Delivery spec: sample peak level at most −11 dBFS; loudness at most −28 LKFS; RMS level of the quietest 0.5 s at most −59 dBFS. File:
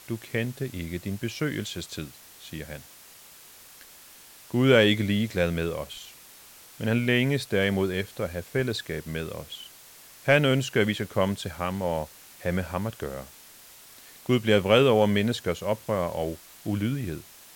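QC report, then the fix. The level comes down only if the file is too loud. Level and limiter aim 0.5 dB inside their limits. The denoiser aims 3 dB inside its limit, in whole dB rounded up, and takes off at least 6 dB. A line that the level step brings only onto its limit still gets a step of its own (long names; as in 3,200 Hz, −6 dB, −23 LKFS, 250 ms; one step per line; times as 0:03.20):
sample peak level −6.5 dBFS: out of spec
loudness −26.5 LKFS: out of spec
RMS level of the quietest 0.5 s −50 dBFS: out of spec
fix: broadband denoise 10 dB, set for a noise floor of −50 dBFS
level −2 dB
brickwall limiter −11.5 dBFS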